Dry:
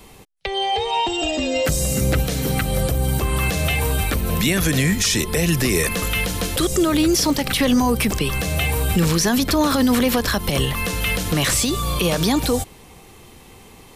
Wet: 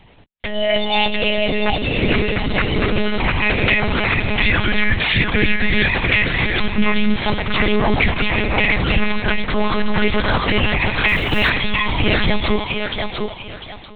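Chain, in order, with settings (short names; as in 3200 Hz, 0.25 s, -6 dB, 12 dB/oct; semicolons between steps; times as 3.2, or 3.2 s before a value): 7.17–7.87 minimum comb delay 2.4 ms; HPF 50 Hz 6 dB/oct; frequency shift -130 Hz; thinning echo 0.698 s, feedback 31%, high-pass 330 Hz, level -3 dB; monotone LPC vocoder at 8 kHz 210 Hz; AGC gain up to 7 dB; 11.08–11.5 short-mantissa float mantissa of 4-bit; dynamic EQ 2100 Hz, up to +6 dB, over -34 dBFS, Q 2.7; gain -1.5 dB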